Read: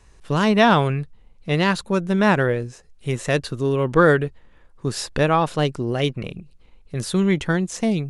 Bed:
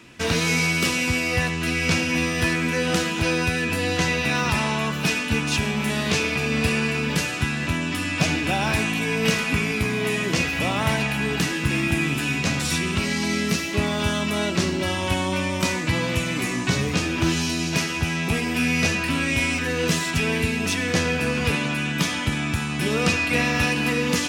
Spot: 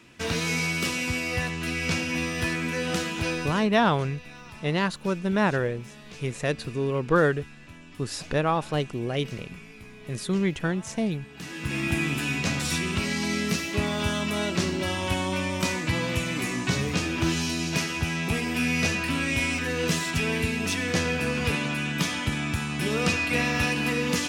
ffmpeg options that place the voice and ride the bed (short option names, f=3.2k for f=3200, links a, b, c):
-filter_complex "[0:a]adelay=3150,volume=-6dB[a];[1:a]volume=13.5dB,afade=t=out:st=3.28:d=0.44:silence=0.141254,afade=t=in:st=11.34:d=0.59:silence=0.112202[b];[a][b]amix=inputs=2:normalize=0"